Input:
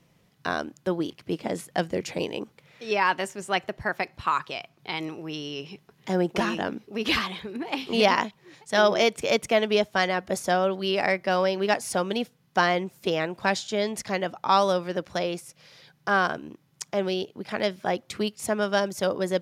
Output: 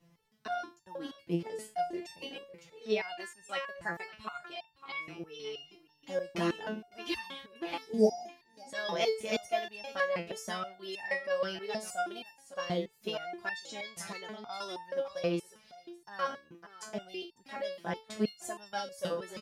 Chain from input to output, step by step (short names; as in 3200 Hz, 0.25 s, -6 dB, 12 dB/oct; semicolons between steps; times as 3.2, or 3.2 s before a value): spectral repair 7.8–8.54, 900–4600 Hz after; echo 0.555 s -15.5 dB; stepped resonator 6.3 Hz 170–900 Hz; gain +5 dB